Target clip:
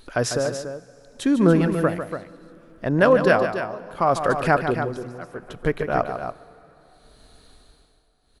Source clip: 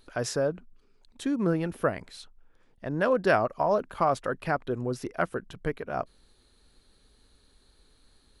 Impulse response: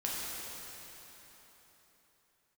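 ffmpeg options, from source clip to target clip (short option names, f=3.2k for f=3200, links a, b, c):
-filter_complex "[0:a]tremolo=f=0.68:d=0.93,aecho=1:1:148.7|285.7:0.355|0.355,asplit=2[a][b];[1:a]atrim=start_sample=2205[c];[b][c]afir=irnorm=-1:irlink=0,volume=-23.5dB[d];[a][d]amix=inputs=2:normalize=0,volume=9dB"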